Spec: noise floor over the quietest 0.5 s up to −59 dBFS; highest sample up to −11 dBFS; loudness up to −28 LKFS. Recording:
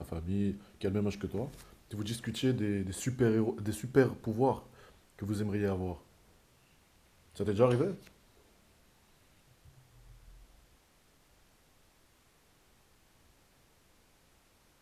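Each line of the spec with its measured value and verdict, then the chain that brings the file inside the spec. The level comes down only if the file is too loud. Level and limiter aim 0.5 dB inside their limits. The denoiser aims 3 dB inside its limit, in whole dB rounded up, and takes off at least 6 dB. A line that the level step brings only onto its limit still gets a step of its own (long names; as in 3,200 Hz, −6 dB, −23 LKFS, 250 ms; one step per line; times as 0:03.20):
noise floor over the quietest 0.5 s −66 dBFS: in spec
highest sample −12.0 dBFS: in spec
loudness −33.0 LKFS: in spec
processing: no processing needed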